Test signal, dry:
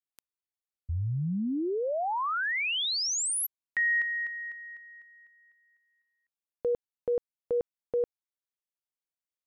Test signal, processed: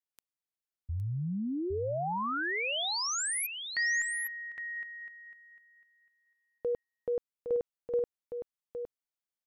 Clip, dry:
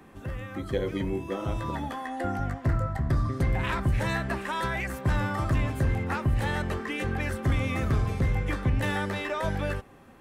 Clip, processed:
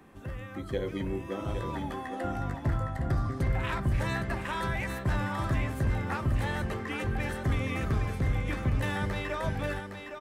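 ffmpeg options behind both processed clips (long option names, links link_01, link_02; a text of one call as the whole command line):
ffmpeg -i in.wav -af "aecho=1:1:812:0.447,volume=-3.5dB" out.wav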